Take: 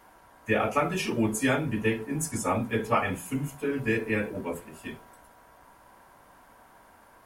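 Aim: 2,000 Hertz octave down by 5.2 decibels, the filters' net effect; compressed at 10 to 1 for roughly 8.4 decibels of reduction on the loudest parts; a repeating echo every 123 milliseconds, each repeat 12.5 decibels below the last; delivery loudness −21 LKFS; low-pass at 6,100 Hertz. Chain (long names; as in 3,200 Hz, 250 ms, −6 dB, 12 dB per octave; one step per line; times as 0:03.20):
low-pass filter 6,100 Hz
parametric band 2,000 Hz −6.5 dB
downward compressor 10 to 1, threshold −29 dBFS
repeating echo 123 ms, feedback 24%, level −12.5 dB
level +14 dB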